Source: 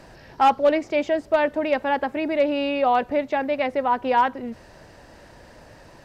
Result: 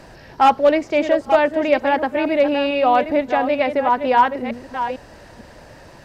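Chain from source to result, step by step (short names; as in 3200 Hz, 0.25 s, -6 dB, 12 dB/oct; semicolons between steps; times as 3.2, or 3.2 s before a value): reverse delay 0.451 s, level -8.5 dB; short-mantissa float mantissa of 8-bit; gain +4 dB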